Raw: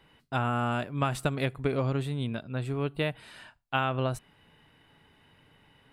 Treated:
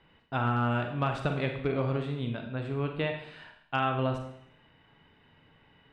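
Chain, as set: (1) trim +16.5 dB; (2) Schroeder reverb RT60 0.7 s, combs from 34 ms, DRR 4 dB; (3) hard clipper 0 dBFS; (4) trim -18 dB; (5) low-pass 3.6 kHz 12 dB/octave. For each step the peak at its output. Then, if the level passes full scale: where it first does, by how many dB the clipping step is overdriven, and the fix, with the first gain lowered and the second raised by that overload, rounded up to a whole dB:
+3.5 dBFS, +4.0 dBFS, 0.0 dBFS, -18.0 dBFS, -17.5 dBFS; step 1, 4.0 dB; step 1 +12.5 dB, step 4 -14 dB

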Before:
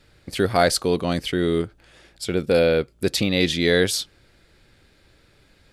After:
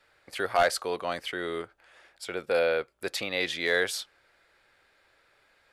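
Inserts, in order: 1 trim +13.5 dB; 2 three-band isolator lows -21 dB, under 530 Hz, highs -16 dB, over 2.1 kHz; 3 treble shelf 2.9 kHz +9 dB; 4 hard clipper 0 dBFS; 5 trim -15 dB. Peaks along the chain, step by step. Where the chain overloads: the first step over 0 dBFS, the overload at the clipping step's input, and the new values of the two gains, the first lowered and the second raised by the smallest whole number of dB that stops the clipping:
+9.5 dBFS, +5.5 dBFS, +7.0 dBFS, 0.0 dBFS, -15.0 dBFS; step 1, 7.0 dB; step 1 +6.5 dB, step 5 -8 dB

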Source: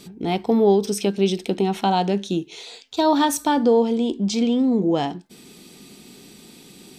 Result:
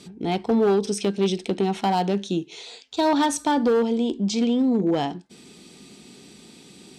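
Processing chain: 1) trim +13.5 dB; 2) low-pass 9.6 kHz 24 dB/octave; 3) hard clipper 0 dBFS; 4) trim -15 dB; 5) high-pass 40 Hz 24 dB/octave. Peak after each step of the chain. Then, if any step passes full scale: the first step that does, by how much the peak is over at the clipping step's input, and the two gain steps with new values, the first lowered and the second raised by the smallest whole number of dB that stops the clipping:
+7.5 dBFS, +7.5 dBFS, 0.0 dBFS, -15.0 dBFS, -11.5 dBFS; step 1, 7.5 dB; step 1 +5.5 dB, step 4 -7 dB

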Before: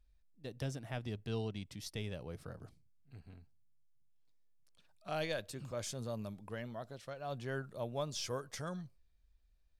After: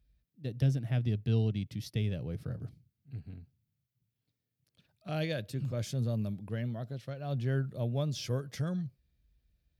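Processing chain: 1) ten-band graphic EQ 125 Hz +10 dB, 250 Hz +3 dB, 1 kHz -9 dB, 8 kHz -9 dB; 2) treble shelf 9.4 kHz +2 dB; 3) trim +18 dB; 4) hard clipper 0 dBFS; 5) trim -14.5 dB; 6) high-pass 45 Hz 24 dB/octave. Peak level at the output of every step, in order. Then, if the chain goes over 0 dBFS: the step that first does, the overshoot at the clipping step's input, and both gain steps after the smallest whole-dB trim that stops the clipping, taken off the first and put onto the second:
-22.0 dBFS, -22.0 dBFS, -4.0 dBFS, -4.0 dBFS, -18.5 dBFS, -17.5 dBFS; nothing clips

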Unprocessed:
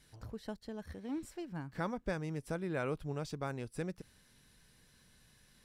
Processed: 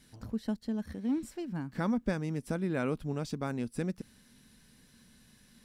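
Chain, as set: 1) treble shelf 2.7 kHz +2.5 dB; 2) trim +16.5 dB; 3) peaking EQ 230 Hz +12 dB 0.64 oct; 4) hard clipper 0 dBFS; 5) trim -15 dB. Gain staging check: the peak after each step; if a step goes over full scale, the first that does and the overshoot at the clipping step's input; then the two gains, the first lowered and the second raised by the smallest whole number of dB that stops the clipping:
-21.0 dBFS, -4.5 dBFS, -2.5 dBFS, -2.5 dBFS, -17.5 dBFS; nothing clips

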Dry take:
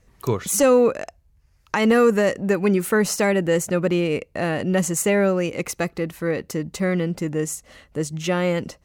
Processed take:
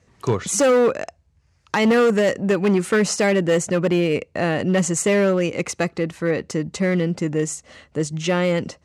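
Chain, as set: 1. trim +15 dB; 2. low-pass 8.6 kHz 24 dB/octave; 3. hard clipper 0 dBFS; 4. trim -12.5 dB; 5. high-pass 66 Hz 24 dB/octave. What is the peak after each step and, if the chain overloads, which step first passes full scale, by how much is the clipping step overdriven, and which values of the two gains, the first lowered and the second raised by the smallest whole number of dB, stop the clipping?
+7.5 dBFS, +7.5 dBFS, 0.0 dBFS, -12.5 dBFS, -7.5 dBFS; step 1, 7.5 dB; step 1 +7 dB, step 4 -4.5 dB

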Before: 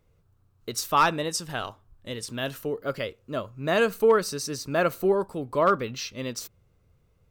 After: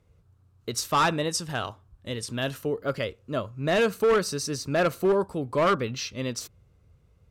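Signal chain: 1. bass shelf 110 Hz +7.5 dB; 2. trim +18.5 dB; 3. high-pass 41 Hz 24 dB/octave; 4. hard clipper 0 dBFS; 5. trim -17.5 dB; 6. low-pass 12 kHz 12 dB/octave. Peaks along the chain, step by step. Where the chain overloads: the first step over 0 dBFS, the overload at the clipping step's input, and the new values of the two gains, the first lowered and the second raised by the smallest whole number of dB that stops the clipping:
-10.0 dBFS, +8.5 dBFS, +7.5 dBFS, 0.0 dBFS, -17.5 dBFS, -16.5 dBFS; step 2, 7.5 dB; step 2 +10.5 dB, step 5 -9.5 dB

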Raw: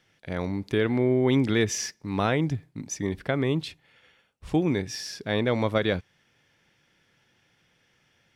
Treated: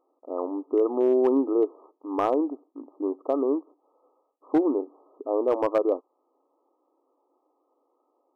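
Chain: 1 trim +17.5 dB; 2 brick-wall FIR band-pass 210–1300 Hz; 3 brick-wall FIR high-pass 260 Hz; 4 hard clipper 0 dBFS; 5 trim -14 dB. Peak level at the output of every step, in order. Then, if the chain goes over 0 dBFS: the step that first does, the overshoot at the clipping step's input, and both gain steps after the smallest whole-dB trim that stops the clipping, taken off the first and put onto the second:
+6.0 dBFS, +4.5 dBFS, +4.0 dBFS, 0.0 dBFS, -14.0 dBFS; step 1, 4.0 dB; step 1 +13.5 dB, step 5 -10 dB

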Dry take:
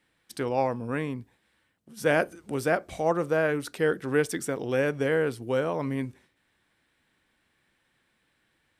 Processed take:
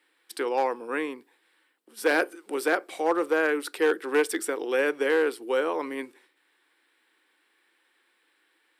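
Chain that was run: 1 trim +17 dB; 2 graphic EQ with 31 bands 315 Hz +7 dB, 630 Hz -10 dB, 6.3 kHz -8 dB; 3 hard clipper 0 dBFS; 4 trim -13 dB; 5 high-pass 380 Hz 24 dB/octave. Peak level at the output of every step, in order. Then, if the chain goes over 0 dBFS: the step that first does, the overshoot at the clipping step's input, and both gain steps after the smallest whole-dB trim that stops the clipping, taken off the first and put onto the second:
+6.5 dBFS, +6.0 dBFS, 0.0 dBFS, -13.0 dBFS, -10.0 dBFS; step 1, 6.0 dB; step 1 +11 dB, step 4 -7 dB

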